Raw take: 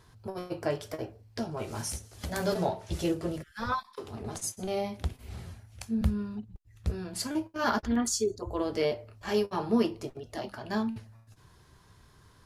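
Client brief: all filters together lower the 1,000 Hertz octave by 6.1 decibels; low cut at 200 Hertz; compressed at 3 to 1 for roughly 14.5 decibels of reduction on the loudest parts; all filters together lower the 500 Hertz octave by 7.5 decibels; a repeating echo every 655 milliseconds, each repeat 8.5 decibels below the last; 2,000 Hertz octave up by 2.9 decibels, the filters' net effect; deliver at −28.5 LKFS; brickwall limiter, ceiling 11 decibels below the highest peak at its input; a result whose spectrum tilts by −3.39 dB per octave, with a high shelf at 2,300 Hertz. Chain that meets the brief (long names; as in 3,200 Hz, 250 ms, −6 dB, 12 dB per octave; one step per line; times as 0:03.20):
high-pass filter 200 Hz
parametric band 500 Hz −8 dB
parametric band 1,000 Hz −8 dB
parametric band 2,000 Hz +6.5 dB
high-shelf EQ 2,300 Hz +3 dB
downward compressor 3 to 1, threshold −45 dBFS
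brickwall limiter −35 dBFS
repeating echo 655 ms, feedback 38%, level −8.5 dB
level +18.5 dB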